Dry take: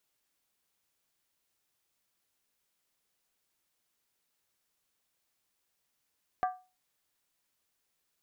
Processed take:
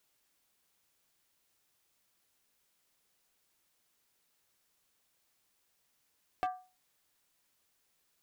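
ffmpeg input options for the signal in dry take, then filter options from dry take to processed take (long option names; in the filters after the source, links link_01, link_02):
-f lavfi -i "aevalsrc='0.0668*pow(10,-3*t/0.31)*sin(2*PI*738*t)+0.0299*pow(10,-3*t/0.246)*sin(2*PI*1176.4*t)+0.0133*pow(10,-3*t/0.212)*sin(2*PI*1576.4*t)+0.00596*pow(10,-3*t/0.205)*sin(2*PI*1694.4*t)+0.00266*pow(10,-3*t/0.19)*sin(2*PI*1957.9*t)':duration=0.63:sample_rate=44100"
-filter_complex "[0:a]acompressor=threshold=-36dB:ratio=2,asplit=2[link_01][link_02];[link_02]aeval=exprs='0.0211*(abs(mod(val(0)/0.0211+3,4)-2)-1)':channel_layout=same,volume=-4.5dB[link_03];[link_01][link_03]amix=inputs=2:normalize=0"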